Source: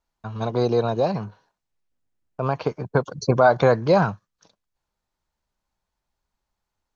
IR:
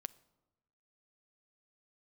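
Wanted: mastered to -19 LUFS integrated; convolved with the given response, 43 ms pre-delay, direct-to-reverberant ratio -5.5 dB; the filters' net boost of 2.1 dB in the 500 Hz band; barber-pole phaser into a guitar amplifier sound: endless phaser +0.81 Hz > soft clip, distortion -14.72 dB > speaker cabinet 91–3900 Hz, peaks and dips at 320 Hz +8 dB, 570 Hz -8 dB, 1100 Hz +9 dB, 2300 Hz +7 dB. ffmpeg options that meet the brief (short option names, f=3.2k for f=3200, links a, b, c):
-filter_complex "[0:a]equalizer=f=500:t=o:g=5.5,asplit=2[a][b];[1:a]atrim=start_sample=2205,adelay=43[c];[b][c]afir=irnorm=-1:irlink=0,volume=9dB[d];[a][d]amix=inputs=2:normalize=0,asplit=2[e][f];[f]afreqshift=0.81[g];[e][g]amix=inputs=2:normalize=1,asoftclip=threshold=-4dB,highpass=91,equalizer=f=320:t=q:w=4:g=8,equalizer=f=570:t=q:w=4:g=-8,equalizer=f=1.1k:t=q:w=4:g=9,equalizer=f=2.3k:t=q:w=4:g=7,lowpass=f=3.9k:w=0.5412,lowpass=f=3.9k:w=1.3066,volume=-1dB"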